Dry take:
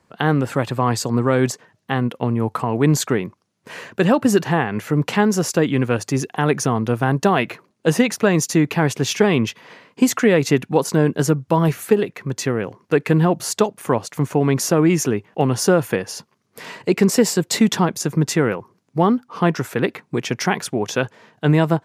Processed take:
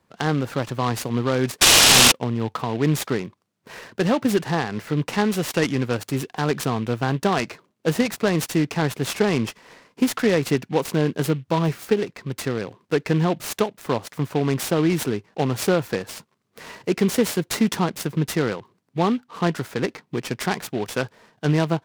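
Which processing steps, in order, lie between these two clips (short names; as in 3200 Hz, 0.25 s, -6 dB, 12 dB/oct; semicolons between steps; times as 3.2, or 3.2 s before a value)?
1.61–2.12 painted sound noise 2400–6300 Hz -8 dBFS; 5.25–5.67 band shelf 2700 Hz +9.5 dB 1.3 oct; noise-modulated delay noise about 2300 Hz, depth 0.04 ms; gain -4.5 dB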